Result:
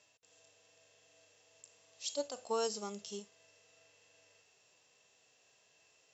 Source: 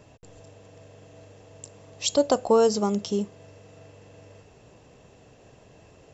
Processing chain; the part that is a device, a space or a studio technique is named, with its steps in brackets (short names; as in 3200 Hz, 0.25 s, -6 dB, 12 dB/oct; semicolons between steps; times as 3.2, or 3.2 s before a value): 2.14–3.2 low shelf 430 Hz +6 dB; harmonic-percussive split percussive -14 dB; piezo pickup straight into a mixer (LPF 6300 Hz 12 dB/oct; differentiator); gain +4.5 dB